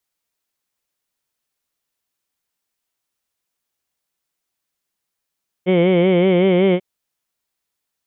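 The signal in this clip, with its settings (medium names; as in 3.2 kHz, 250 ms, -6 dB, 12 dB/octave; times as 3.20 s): formant vowel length 1.14 s, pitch 177 Hz, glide +1 st, F1 460 Hz, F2 2.2 kHz, F3 3.1 kHz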